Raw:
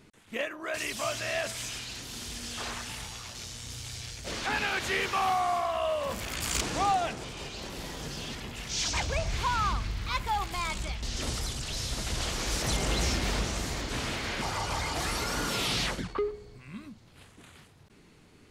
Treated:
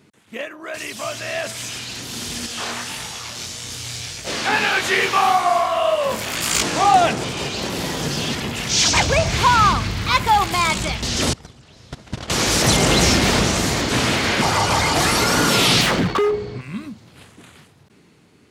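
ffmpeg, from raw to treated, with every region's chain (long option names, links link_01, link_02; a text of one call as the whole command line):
ffmpeg -i in.wav -filter_complex "[0:a]asettb=1/sr,asplit=3[link_01][link_02][link_03];[link_01]atrim=end=2.464[link_04];[link_02]atrim=start=2.46:end=6.94,asetpts=PTS-STARTPTS,afade=type=in:duration=0.004:curve=qsin,afade=type=out:start_time=4.476:duration=0.004:curve=qsin,lowshelf=frequency=280:gain=-5.5,flanger=delay=18.5:depth=7.4:speed=1.7[link_05];[link_03]atrim=start=6.936[link_06];[link_04][link_05]acrossfade=duration=0.004:curve1=hsin:curve2=qsin[link_07];[link_07][link_06]acrossfade=duration=0.004:curve1=qsin:curve2=hsin,asettb=1/sr,asplit=3[link_08][link_09][link_10];[link_08]atrim=end=11.334[link_11];[link_09]atrim=start=11.33:end=12.3,asetpts=PTS-STARTPTS,afade=type=in:duration=0.004:curve=qsin,afade=type=out:start_time=0.966:duration=0.004:curve=qsin,agate=range=-22dB:threshold=-30dB:ratio=16:release=100:detection=peak,lowpass=frequency=2000:poles=1[link_12];[link_10]atrim=start=12.296[link_13];[link_11][link_12]acrossfade=duration=0.004:curve1=hsin:curve2=qsin[link_14];[link_14][link_13]acrossfade=duration=0.004:curve1=qsin:curve2=hsin,asettb=1/sr,asplit=3[link_15][link_16][link_17];[link_15]atrim=end=15.814[link_18];[link_16]atrim=start=15.81:end=16.61,asetpts=PTS-STARTPTS,afade=type=in:duration=0.004:curve=qsin,afade=type=out:start_time=0.796:duration=0.004:curve=qsin,lowpass=4300,acontrast=84,volume=30dB,asoftclip=hard,volume=-30dB[link_19];[link_17]atrim=start=16.606[link_20];[link_18][link_19]acrossfade=duration=0.004:curve1=hsin:curve2=qsin[link_21];[link_21][link_20]acrossfade=duration=0.004:curve1=qsin:curve2=hsin,highpass=110,lowshelf=frequency=330:gain=3,dynaudnorm=framelen=330:gausssize=13:maxgain=12dB,volume=2.5dB" out.wav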